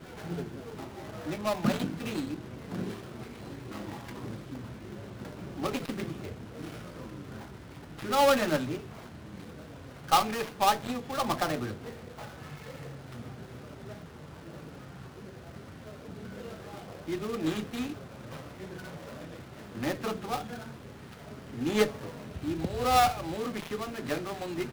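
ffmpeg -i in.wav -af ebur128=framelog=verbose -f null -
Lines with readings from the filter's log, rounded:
Integrated loudness:
  I:         -32.7 LUFS
  Threshold: -43.9 LUFS
Loudness range:
  LRA:        14.7 LU
  Threshold: -54.1 LUFS
  LRA low:   -44.8 LUFS
  LRA high:  -30.1 LUFS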